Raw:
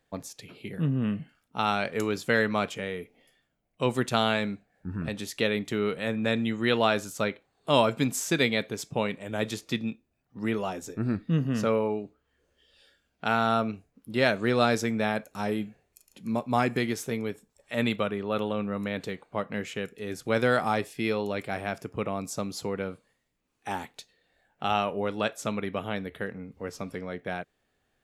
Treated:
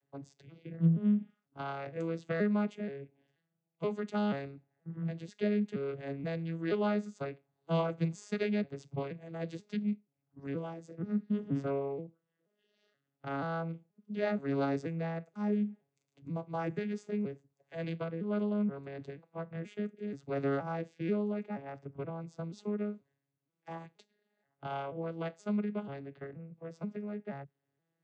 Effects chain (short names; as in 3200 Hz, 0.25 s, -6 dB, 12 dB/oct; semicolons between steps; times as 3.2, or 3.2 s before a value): arpeggiated vocoder minor triad, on C#3, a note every 0.479 s; 21.1–22.5 high shelf 6000 Hz -11.5 dB; gain -5.5 dB